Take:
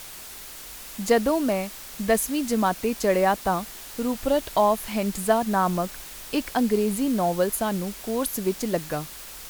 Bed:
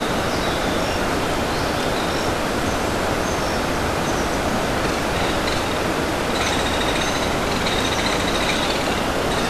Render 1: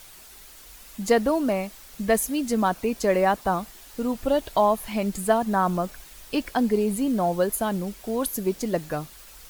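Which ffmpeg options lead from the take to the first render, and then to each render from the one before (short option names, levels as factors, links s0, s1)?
-af "afftdn=nr=8:nf=-41"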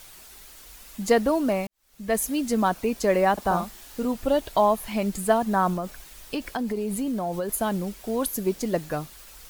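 -filter_complex "[0:a]asettb=1/sr,asplit=3[s0][s1][s2];[s0]atrim=end=3.334[s3];[s1]atrim=start=3.33:end=4.05,asetpts=PTS-STARTPTS,afade=t=in:d=0.004:c=qsin,afade=t=out:st=0.716:d=0.004:c=qsin,asplit=2[s4][s5];[s5]adelay=45,volume=0.531[s6];[s4][s6]amix=inputs=2:normalize=0,atrim=end_sample=31752[s7];[s2]atrim=start=4.046[s8];[s3][s7]acrossfade=d=0.004:c1=hsin:c2=qsin[s9];[s9][s8]acrossfade=d=0.004:c1=qsin:c2=hsin,asettb=1/sr,asplit=3[s10][s11][s12];[s10]atrim=end=5.734[s13];[s11]atrim=start=5.73:end=7.49,asetpts=PTS-STARTPTS,afade=t=in:d=0.004:c=qsin,afade=t=out:st=1.756:d=0.004:c=qsin,acompressor=threshold=0.0631:ratio=6:attack=3.2:release=140:knee=1:detection=peak[s14];[s12]atrim=start=7.486[s15];[s13][s14]acrossfade=d=0.004:c1=hsin:c2=qsin[s16];[s16][s15]acrossfade=d=0.004:c1=qsin:c2=hsin,asplit=2[s17][s18];[s17]atrim=end=1.67,asetpts=PTS-STARTPTS,afade=t=out:st=1.666:d=0.004:c=hsin[s19];[s18]atrim=start=1.67,asetpts=PTS-STARTPTS,afade=t=in:d=0.56:c=qua[s20];[s19][s20]concat=n=2:v=0:a=1"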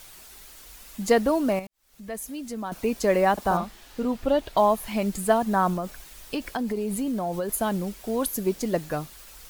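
-filter_complex "[0:a]asettb=1/sr,asplit=3[s0][s1][s2];[s0]atrim=end=1.594[s3];[s1]atrim=start=1.59:end=2.72,asetpts=PTS-STARTPTS,afade=t=in:d=0.004:c=qsin,afade=t=out:st=1.126:d=0.004:c=qsin,acompressor=threshold=0.00398:ratio=1.5:attack=3.2:release=140:knee=1:detection=peak[s4];[s2]atrim=start=2.716[s5];[s3][s4]acrossfade=d=0.004:c1=hsin:c2=qsin[s6];[s6][s5]acrossfade=d=0.004:c1=qsin:c2=hsin,asettb=1/sr,asplit=3[s7][s8][s9];[s7]atrim=end=3.574[s10];[s8]atrim=start=3.57:end=4.57,asetpts=PTS-STARTPTS,afade=t=in:d=0.004:c=qsin,afade=t=out:st=0.996:d=0.004:c=qsin,acrossover=split=5000[s11][s12];[s12]acompressor=threshold=0.00224:ratio=4:attack=1:release=60[s13];[s11][s13]amix=inputs=2:normalize=0[s14];[s9]atrim=start=4.566[s15];[s10][s14]acrossfade=d=0.004:c1=hsin:c2=qsin[s16];[s16][s15]acrossfade=d=0.004:c1=qsin:c2=hsin"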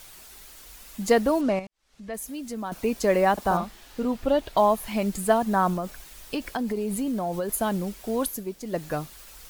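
-filter_complex "[0:a]asettb=1/sr,asplit=3[s0][s1][s2];[s0]atrim=end=1.414[s3];[s1]atrim=start=1.41:end=2.14,asetpts=PTS-STARTPTS,afade=t=in:d=0.004:c=qsin,afade=t=out:st=0.726:d=0.004:c=qsin,lowpass=6300[s4];[s2]atrim=start=2.136[s5];[s3][s4]acrossfade=d=0.004:c1=hsin:c2=qsin[s6];[s6][s5]acrossfade=d=0.004:c1=qsin:c2=hsin,asplit=3[s7][s8][s9];[s7]atrim=end=8.46,asetpts=PTS-STARTPTS,afade=t=out:st=8.22:d=0.24:silence=0.375837[s10];[s8]atrim=start=8.46:end=8.64,asetpts=PTS-STARTPTS,volume=0.376[s11];[s9]atrim=start=8.64,asetpts=PTS-STARTPTS,afade=t=in:d=0.24:silence=0.375837[s12];[s10][s11][s12]concat=n=3:v=0:a=1"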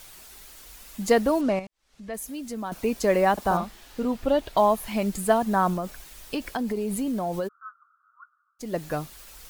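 -filter_complex "[0:a]asplit=3[s0][s1][s2];[s0]afade=t=out:st=7.47:d=0.02[s3];[s1]asuperpass=centerf=1300:order=8:qfactor=4.4,afade=t=in:st=7.47:d=0.02,afade=t=out:st=8.59:d=0.02[s4];[s2]afade=t=in:st=8.59:d=0.02[s5];[s3][s4][s5]amix=inputs=3:normalize=0"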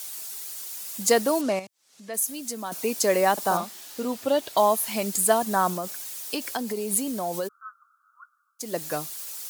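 -af "highpass=f=110:w=0.5412,highpass=f=110:w=1.3066,bass=f=250:g=-7,treble=f=4000:g=12"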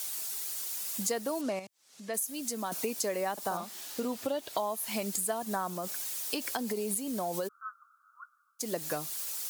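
-af "acompressor=threshold=0.0316:ratio=6"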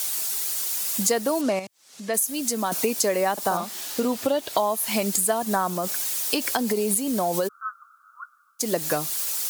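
-af "volume=2.99"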